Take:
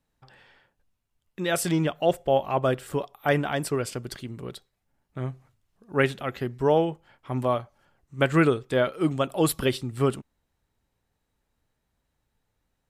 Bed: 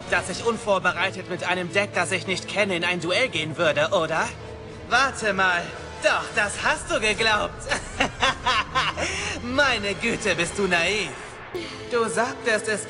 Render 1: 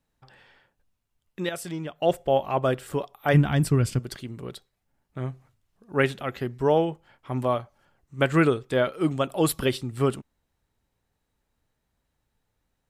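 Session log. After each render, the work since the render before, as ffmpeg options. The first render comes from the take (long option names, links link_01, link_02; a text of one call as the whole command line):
ffmpeg -i in.wav -filter_complex "[0:a]asplit=3[link_01][link_02][link_03];[link_01]afade=type=out:start_time=3.33:duration=0.02[link_04];[link_02]asubboost=boost=7.5:cutoff=200,afade=type=in:start_time=3.33:duration=0.02,afade=type=out:start_time=3.98:duration=0.02[link_05];[link_03]afade=type=in:start_time=3.98:duration=0.02[link_06];[link_04][link_05][link_06]amix=inputs=3:normalize=0,asplit=3[link_07][link_08][link_09];[link_07]atrim=end=1.492[link_10];[link_08]atrim=start=1.488:end=2.022,asetpts=PTS-STARTPTS,volume=-9dB[link_11];[link_09]atrim=start=2.018[link_12];[link_10][link_11]acrossfade=duration=0.004:curve1=hsin:curve2=hsin[link_13];[link_13][link_12]acrossfade=duration=0.004:curve1=hsin:curve2=hsin" out.wav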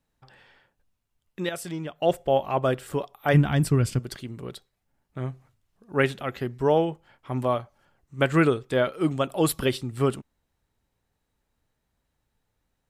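ffmpeg -i in.wav -af anull out.wav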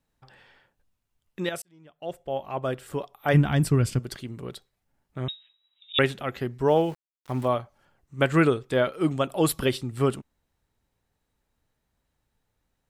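ffmpeg -i in.wav -filter_complex "[0:a]asettb=1/sr,asplit=3[link_01][link_02][link_03];[link_01]atrim=end=5.284[link_04];[link_02]atrim=start=5.28:end=5.99,asetpts=PTS-STARTPTS,afade=type=in:duration=0.004:curve=qsin,afade=type=out:start_time=0.706:duration=0.004:curve=qsin,lowpass=frequency=3300:width_type=q:width=0.5098,lowpass=frequency=3300:width_type=q:width=0.6013,lowpass=frequency=3300:width_type=q:width=0.9,lowpass=frequency=3300:width_type=q:width=2.563,afreqshift=-3900[link_05];[link_03]atrim=start=5.986[link_06];[link_04][link_05]acrossfade=duration=0.004:curve1=hsin:curve2=qsin[link_07];[link_07][link_06]acrossfade=duration=0.004:curve1=qsin:curve2=hsin,asplit=3[link_08][link_09][link_10];[link_08]afade=type=out:start_time=6.67:duration=0.02[link_11];[link_09]aeval=exprs='val(0)*gte(abs(val(0)),0.0075)':channel_layout=same,afade=type=in:start_time=6.67:duration=0.02,afade=type=out:start_time=7.48:duration=0.02[link_12];[link_10]afade=type=in:start_time=7.48:duration=0.02[link_13];[link_11][link_12][link_13]amix=inputs=3:normalize=0,asplit=2[link_14][link_15];[link_14]atrim=end=1.62,asetpts=PTS-STARTPTS,afade=type=out:start_time=1.616:duration=0.004:curve=hsin[link_16];[link_15]atrim=start=1.62,asetpts=PTS-STARTPTS,afade=type=in:duration=1.86[link_17];[link_16][link_17]concat=n=2:v=0:a=1" out.wav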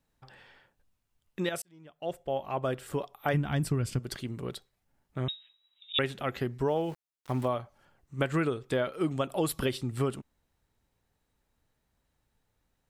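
ffmpeg -i in.wav -af "acompressor=threshold=-26dB:ratio=4" out.wav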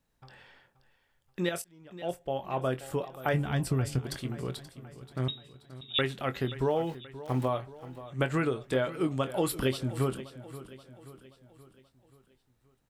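ffmpeg -i in.wav -filter_complex "[0:a]asplit=2[link_01][link_02];[link_02]adelay=23,volume=-10.5dB[link_03];[link_01][link_03]amix=inputs=2:normalize=0,aecho=1:1:529|1058|1587|2116|2645:0.168|0.0856|0.0437|0.0223|0.0114" out.wav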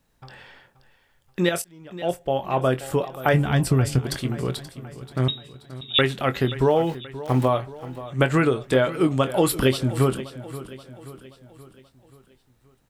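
ffmpeg -i in.wav -af "volume=9dB" out.wav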